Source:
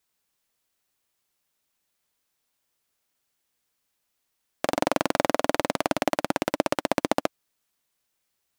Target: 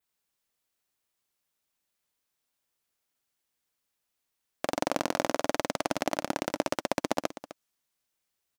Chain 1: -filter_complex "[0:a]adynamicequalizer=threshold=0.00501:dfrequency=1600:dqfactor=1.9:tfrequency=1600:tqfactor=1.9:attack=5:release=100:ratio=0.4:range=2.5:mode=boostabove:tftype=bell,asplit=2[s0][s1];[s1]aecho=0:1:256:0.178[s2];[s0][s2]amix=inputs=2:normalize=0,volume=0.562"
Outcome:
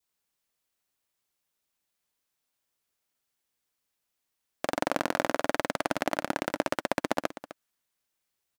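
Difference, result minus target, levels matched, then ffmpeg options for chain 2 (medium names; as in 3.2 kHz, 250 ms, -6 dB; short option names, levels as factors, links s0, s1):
8 kHz band -3.5 dB
-filter_complex "[0:a]adynamicequalizer=threshold=0.00501:dfrequency=5900:dqfactor=1.9:tfrequency=5900:tqfactor=1.9:attack=5:release=100:ratio=0.4:range=2.5:mode=boostabove:tftype=bell,asplit=2[s0][s1];[s1]aecho=0:1:256:0.178[s2];[s0][s2]amix=inputs=2:normalize=0,volume=0.562"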